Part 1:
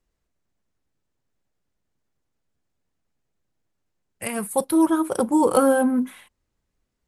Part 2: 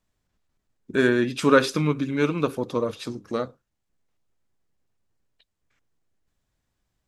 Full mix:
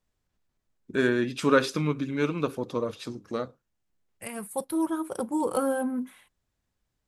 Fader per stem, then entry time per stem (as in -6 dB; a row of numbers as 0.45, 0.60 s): -9.0, -4.0 dB; 0.00, 0.00 s